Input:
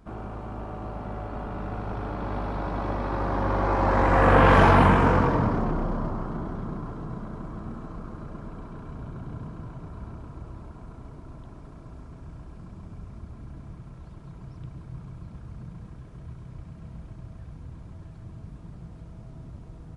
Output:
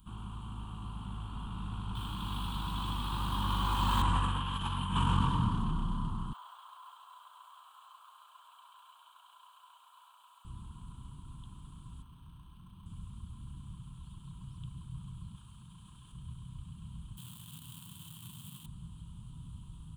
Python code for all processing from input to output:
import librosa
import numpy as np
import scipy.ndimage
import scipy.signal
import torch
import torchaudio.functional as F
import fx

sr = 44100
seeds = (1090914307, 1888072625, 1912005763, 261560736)

y = fx.chain(x, sr, fx.high_shelf(hz=2900.0, db=11.5),
    fx.doubler(ms=26.0, db=-12),
    fx.resample_linear(factor=2), at=(1.95, 4.02))
y = fx.chain(y, sr, fx.ellip_highpass(hz=620.0, order=4, stop_db=60),
    fx.resample_linear(factor=2), at=(6.33, 10.45))
y = fx.chain(y, sr, fx.low_shelf(hz=360.0, db=-7.0),
    fx.resample_linear(factor=6), at=(12.02, 12.86))
y = fx.chain(y, sr, fx.low_shelf(hz=310.0, db=-11.0),
    fx.env_flatten(amount_pct=50), at=(15.35, 16.12))
y = fx.chain(y, sr, fx.highpass(hz=120.0, slope=24),
    fx.quant_companded(bits=4), at=(17.17, 18.66))
y = fx.curve_eq(y, sr, hz=(190.0, 620.0, 1000.0, 2100.0, 3100.0, 5400.0, 8400.0), db=(0, -28, 1, -16, 15, -8, 14))
y = fx.over_compress(y, sr, threshold_db=-22.0, ratio=-0.5)
y = y * 10.0 ** (-6.0 / 20.0)